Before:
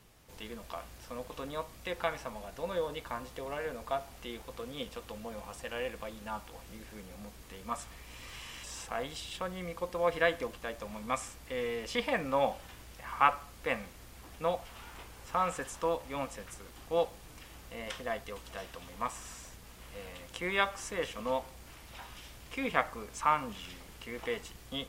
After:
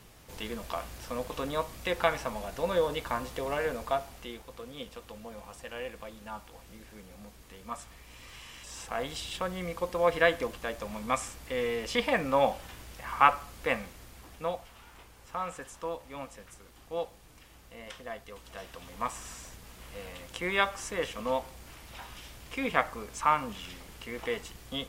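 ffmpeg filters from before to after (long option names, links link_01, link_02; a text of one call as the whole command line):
ffmpeg -i in.wav -af "volume=19.5dB,afade=type=out:start_time=3.65:duration=0.79:silence=0.375837,afade=type=in:start_time=8.63:duration=0.5:silence=0.501187,afade=type=out:start_time=13.62:duration=1.16:silence=0.375837,afade=type=in:start_time=18.26:duration=0.84:silence=0.446684" out.wav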